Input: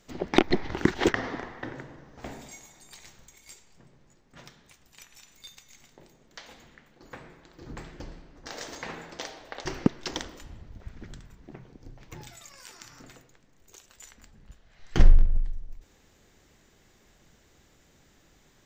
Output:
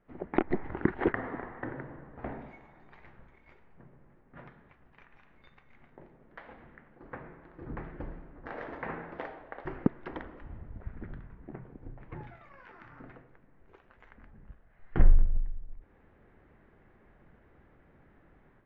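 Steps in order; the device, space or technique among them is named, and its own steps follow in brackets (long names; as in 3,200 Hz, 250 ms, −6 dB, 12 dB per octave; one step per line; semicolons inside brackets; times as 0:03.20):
action camera in a waterproof case (low-pass filter 1,900 Hz 24 dB per octave; automatic gain control gain up to 9 dB; level −7.5 dB; AAC 48 kbit/s 16,000 Hz)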